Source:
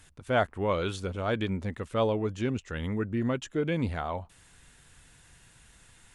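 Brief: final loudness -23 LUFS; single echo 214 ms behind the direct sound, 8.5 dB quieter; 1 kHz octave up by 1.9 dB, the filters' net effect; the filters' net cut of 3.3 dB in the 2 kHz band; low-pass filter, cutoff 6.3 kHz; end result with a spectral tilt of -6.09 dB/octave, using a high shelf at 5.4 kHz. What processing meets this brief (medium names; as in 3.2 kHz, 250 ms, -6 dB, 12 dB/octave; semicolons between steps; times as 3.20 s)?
low-pass 6.3 kHz; peaking EQ 1 kHz +4.5 dB; peaking EQ 2 kHz -7.5 dB; treble shelf 5.4 kHz +3.5 dB; delay 214 ms -8.5 dB; trim +6.5 dB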